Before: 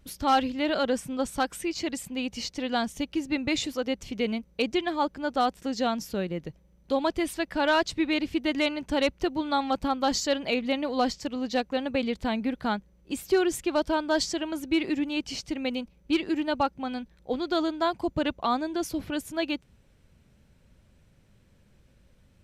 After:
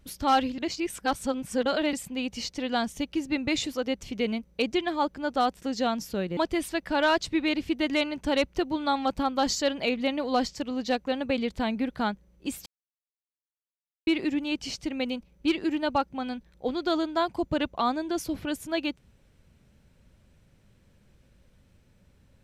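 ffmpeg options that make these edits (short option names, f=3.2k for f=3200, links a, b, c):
-filter_complex "[0:a]asplit=6[a][b][c][d][e][f];[a]atrim=end=0.582[g];[b]atrim=start=0.578:end=1.932,asetpts=PTS-STARTPTS,areverse[h];[c]atrim=start=1.928:end=6.372[i];[d]atrim=start=7.018:end=13.31,asetpts=PTS-STARTPTS,afade=t=out:st=6.288:d=0.004:c=hsin[j];[e]atrim=start=13.31:end=14.72,asetpts=PTS-STARTPTS,volume=0[k];[f]atrim=start=14.72,asetpts=PTS-STARTPTS,afade=t=in:d=0.004:c=hsin[l];[g][h]acrossfade=d=0.004:c1=hsin:c2=hsin[m];[m][i]acrossfade=d=0.004:c1=hsin:c2=hsin[n];[j][k][l]concat=n=3:v=0:a=1[o];[n][o]acrossfade=d=0.004:c1=hsin:c2=hsin"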